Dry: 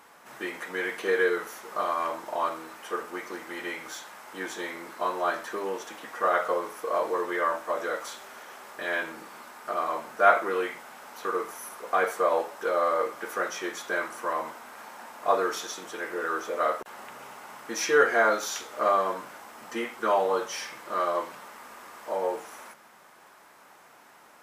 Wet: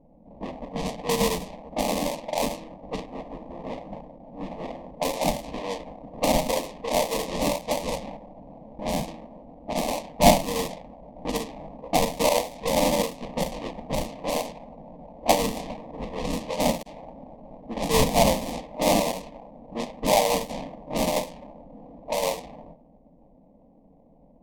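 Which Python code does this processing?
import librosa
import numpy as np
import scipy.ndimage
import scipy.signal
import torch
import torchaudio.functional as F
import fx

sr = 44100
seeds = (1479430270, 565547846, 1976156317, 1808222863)

y = fx.sample_hold(x, sr, seeds[0], rate_hz=1500.0, jitter_pct=20)
y = fx.fixed_phaser(y, sr, hz=380.0, stages=6)
y = fx.env_lowpass(y, sr, base_hz=380.0, full_db=-28.0)
y = y * librosa.db_to_amplitude(5.0)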